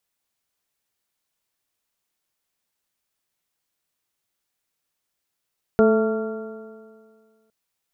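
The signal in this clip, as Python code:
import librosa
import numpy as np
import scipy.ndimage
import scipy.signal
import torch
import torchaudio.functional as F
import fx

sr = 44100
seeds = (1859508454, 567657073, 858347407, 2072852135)

y = fx.additive_stiff(sr, length_s=1.71, hz=218.0, level_db=-16, upper_db=(3.0, -4.5, -17.5, -19.0, -8), decay_s=1.94, stiffness=0.0033)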